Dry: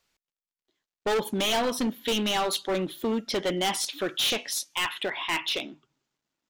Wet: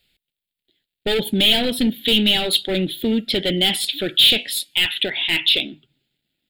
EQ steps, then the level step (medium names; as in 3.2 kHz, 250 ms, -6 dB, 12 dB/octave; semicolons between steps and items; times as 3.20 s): tone controls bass +6 dB, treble +4 dB; peaking EQ 3.6 kHz +9 dB 0.8 oct; static phaser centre 2.6 kHz, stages 4; +6.0 dB